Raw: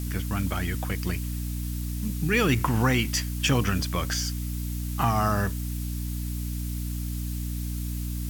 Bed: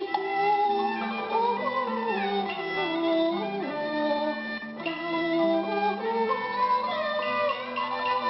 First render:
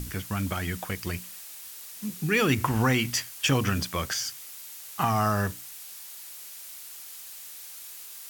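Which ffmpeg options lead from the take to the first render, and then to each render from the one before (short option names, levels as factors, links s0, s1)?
-af "bandreject=f=60:t=h:w=6,bandreject=f=120:t=h:w=6,bandreject=f=180:t=h:w=6,bandreject=f=240:t=h:w=6,bandreject=f=300:t=h:w=6"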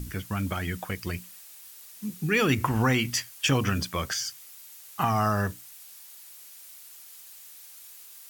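-af "afftdn=nr=6:nf=-43"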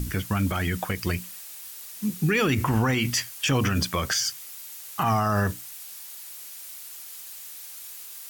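-af "acontrast=70,alimiter=limit=0.178:level=0:latency=1:release=56"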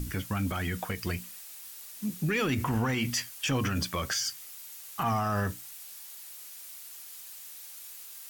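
-af "flanger=delay=3.4:depth=1:regen=84:speed=0.51:shape=triangular,asoftclip=type=tanh:threshold=0.112"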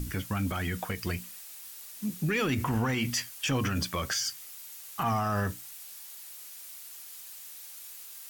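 -af anull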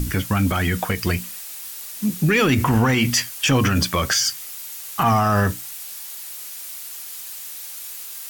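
-af "volume=3.55"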